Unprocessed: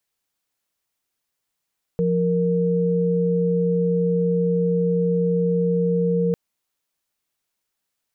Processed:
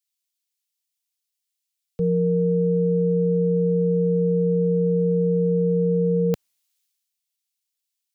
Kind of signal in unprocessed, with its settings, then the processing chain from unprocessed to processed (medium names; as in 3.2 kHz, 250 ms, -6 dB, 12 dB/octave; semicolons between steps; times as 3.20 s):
chord F3/A#4 sine, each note -20 dBFS 4.35 s
three bands expanded up and down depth 70%